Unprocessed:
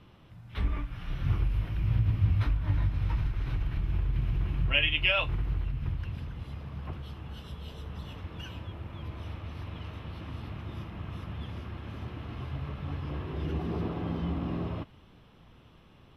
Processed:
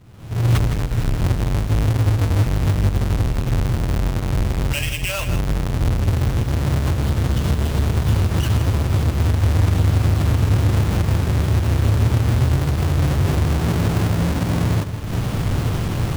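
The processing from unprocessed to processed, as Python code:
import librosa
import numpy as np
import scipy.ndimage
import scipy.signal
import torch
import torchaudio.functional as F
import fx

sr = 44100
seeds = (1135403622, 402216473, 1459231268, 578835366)

p1 = fx.halfwave_hold(x, sr)
p2 = fx.recorder_agc(p1, sr, target_db=-15.5, rise_db_per_s=57.0, max_gain_db=30)
p3 = fx.peak_eq(p2, sr, hz=110.0, db=8.5, octaves=0.86)
p4 = p3 + fx.echo_single(p3, sr, ms=162, db=-9.5, dry=0)
y = p4 * librosa.db_to_amplitude(-3.5)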